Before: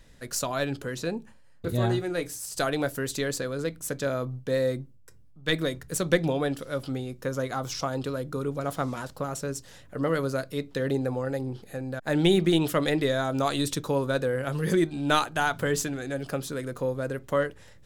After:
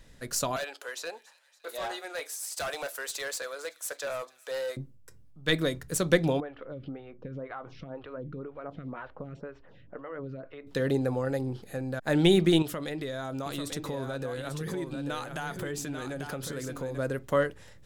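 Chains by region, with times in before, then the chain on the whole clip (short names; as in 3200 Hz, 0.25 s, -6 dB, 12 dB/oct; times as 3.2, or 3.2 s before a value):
0.56–4.77 HPF 580 Hz 24 dB/oct + hard clip -30 dBFS + thin delay 0.282 s, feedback 62%, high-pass 2400 Hz, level -19.5 dB
6.4–10.67 LPF 2700 Hz 24 dB/oct + compressor, threshold -33 dBFS + photocell phaser 2 Hz
12.62–16.98 compressor 4:1, threshold -33 dBFS + echo 0.842 s -7 dB
whole clip: dry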